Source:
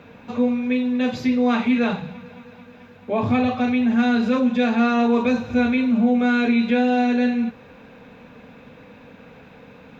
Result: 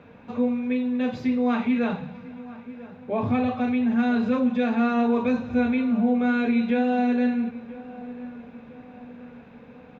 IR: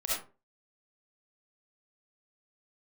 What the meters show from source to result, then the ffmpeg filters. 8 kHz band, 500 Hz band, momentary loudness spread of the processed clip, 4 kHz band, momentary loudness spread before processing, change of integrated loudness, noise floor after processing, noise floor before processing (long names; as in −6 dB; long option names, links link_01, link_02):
can't be measured, −3.5 dB, 18 LU, −9.0 dB, 7 LU, −3.5 dB, −47 dBFS, −47 dBFS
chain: -filter_complex "[0:a]highshelf=frequency=3700:gain=-11.5,asplit=2[link_01][link_02];[link_02]adelay=994,lowpass=frequency=1700:poles=1,volume=-17dB,asplit=2[link_03][link_04];[link_04]adelay=994,lowpass=frequency=1700:poles=1,volume=0.51,asplit=2[link_05][link_06];[link_06]adelay=994,lowpass=frequency=1700:poles=1,volume=0.51,asplit=2[link_07][link_08];[link_08]adelay=994,lowpass=frequency=1700:poles=1,volume=0.51[link_09];[link_03][link_05][link_07][link_09]amix=inputs=4:normalize=0[link_10];[link_01][link_10]amix=inputs=2:normalize=0,volume=-3.5dB"